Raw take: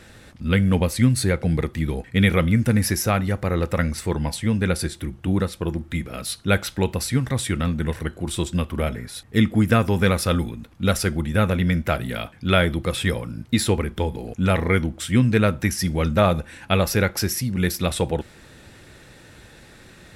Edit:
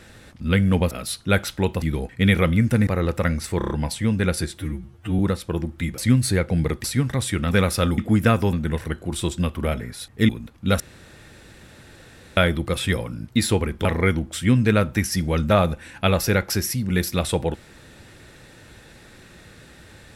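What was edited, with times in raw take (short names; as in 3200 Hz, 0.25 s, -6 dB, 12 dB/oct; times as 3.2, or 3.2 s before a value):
0.91–1.77 swap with 6.1–7.01
2.82–3.41 cut
4.12 stutter 0.03 s, 5 plays
5.01–5.31 stretch 2×
7.68–9.44 swap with 9.99–10.46
10.97–12.54 room tone
14.02–14.52 cut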